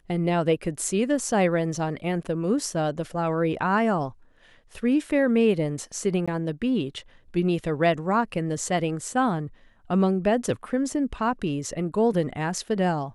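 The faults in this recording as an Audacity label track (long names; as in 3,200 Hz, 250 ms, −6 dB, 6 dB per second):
6.260000	6.280000	drop-out 16 ms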